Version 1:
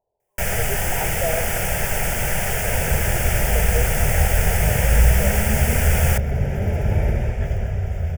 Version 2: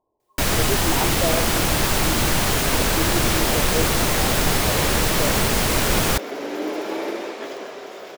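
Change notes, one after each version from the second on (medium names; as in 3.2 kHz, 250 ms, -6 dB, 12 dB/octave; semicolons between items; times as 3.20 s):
second sound: add high-pass 380 Hz 24 dB/octave; master: remove static phaser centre 1.1 kHz, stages 6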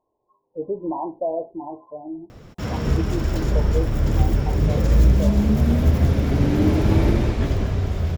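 first sound: muted; second sound: remove high-pass 380 Hz 24 dB/octave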